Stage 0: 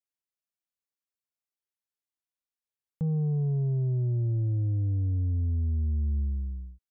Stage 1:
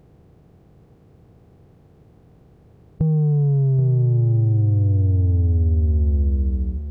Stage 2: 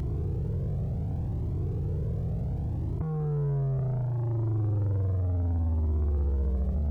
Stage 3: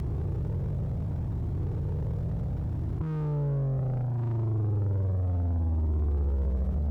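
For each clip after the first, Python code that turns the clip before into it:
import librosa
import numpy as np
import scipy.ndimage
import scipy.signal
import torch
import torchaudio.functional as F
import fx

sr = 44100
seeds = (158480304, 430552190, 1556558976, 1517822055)

y1 = fx.bin_compress(x, sr, power=0.4)
y1 = y1 + 10.0 ** (-11.0 / 20.0) * np.pad(y1, (int(780 * sr / 1000.0), 0))[:len(y1)]
y1 = F.gain(torch.from_numpy(y1), 8.0).numpy()
y2 = fx.bin_compress(y1, sr, power=0.2)
y2 = 10.0 ** (-18.0 / 20.0) * np.tanh(y2 / 10.0 ** (-18.0 / 20.0))
y2 = fx.comb_cascade(y2, sr, direction='rising', hz=0.68)
y2 = F.gain(torch.from_numpy(y2), -4.0).numpy()
y3 = fx.lower_of_two(y2, sr, delay_ms=0.54)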